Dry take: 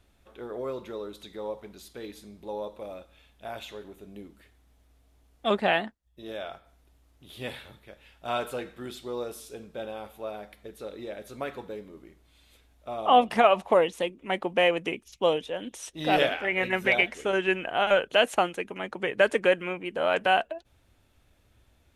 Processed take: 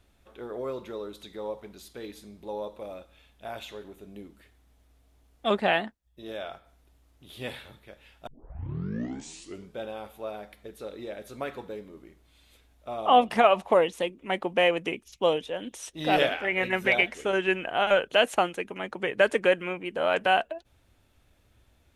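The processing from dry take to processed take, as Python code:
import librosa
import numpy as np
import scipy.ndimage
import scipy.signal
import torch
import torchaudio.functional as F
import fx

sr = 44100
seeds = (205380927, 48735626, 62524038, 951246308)

y = fx.edit(x, sr, fx.tape_start(start_s=8.27, length_s=1.52), tone=tone)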